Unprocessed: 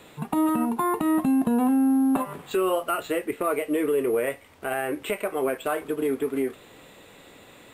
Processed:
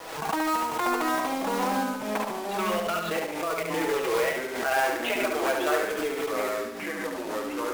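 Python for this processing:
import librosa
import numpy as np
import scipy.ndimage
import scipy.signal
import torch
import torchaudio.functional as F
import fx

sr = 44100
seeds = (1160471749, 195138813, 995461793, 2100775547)

y = np.minimum(x, 2.0 * 10.0 ** (-19.5 / 20.0) - x)
y = scipy.signal.sosfilt(scipy.signal.butter(2, 610.0, 'highpass', fs=sr, output='sos'), y)
y = fx.env_lowpass(y, sr, base_hz=1200.0, full_db=-25.5)
y = scipy.signal.sosfilt(scipy.signal.butter(4, 5700.0, 'lowpass', fs=sr, output='sos'), y)
y = y + 0.6 * np.pad(y, (int(6.2 * sr / 1000.0), 0))[:len(y)]
y = fx.level_steps(y, sr, step_db=15, at=(1.83, 3.93))
y = fx.quant_companded(y, sr, bits=4)
y = fx.echo_pitch(y, sr, ms=444, semitones=-4, count=2, db_per_echo=-6.0)
y = fx.echo_feedback(y, sr, ms=71, feedback_pct=41, wet_db=-4.5)
y = fx.pre_swell(y, sr, db_per_s=52.0)
y = y * 10.0 ** (1.0 / 20.0)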